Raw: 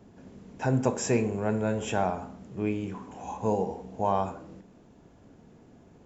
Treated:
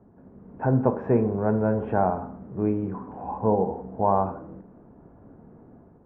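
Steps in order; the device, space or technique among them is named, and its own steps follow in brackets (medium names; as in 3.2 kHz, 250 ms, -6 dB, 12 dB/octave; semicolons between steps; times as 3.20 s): action camera in a waterproof case (low-pass 1.4 kHz 24 dB/octave; level rider gain up to 6.5 dB; trim -1.5 dB; AAC 64 kbps 32 kHz)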